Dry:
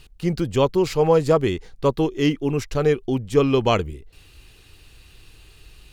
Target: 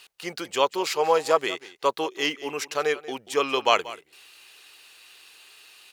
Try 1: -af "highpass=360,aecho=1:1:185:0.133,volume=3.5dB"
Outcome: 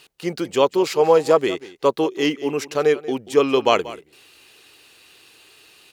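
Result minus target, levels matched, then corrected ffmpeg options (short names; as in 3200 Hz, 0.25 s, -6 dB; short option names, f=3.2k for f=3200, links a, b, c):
1000 Hz band -4.0 dB
-af "highpass=780,aecho=1:1:185:0.133,volume=3.5dB"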